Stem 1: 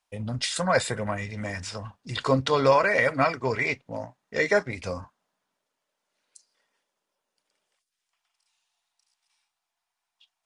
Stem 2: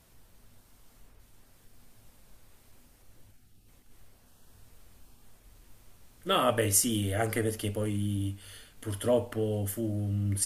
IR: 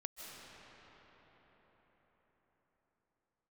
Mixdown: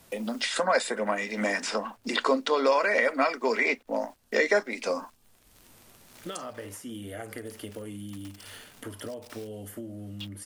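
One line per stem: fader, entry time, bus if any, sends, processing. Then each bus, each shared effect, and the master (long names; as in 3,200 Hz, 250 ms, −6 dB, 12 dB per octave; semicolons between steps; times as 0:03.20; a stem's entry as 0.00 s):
−6.0 dB, 0.00 s, no send, elliptic high-pass filter 220 Hz, stop band 40 dB; automatic gain control gain up to 12 dB; bit reduction 10 bits
−14.5 dB, 0.00 s, no send, downward compressor 6 to 1, threshold −37 dBFS, peak gain reduction 16 dB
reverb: not used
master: multiband upward and downward compressor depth 70%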